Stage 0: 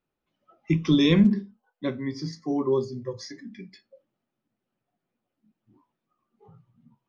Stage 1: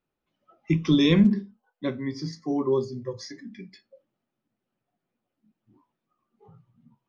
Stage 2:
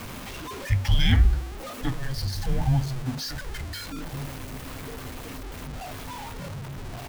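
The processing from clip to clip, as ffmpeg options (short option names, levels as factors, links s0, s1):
-af anull
-filter_complex "[0:a]aeval=exprs='val(0)+0.5*0.0299*sgn(val(0))':c=same,afreqshift=-260,asplit=2[s0][s1];[s1]adelay=1458,volume=0.2,highshelf=f=4000:g=-32.8[s2];[s0][s2]amix=inputs=2:normalize=0"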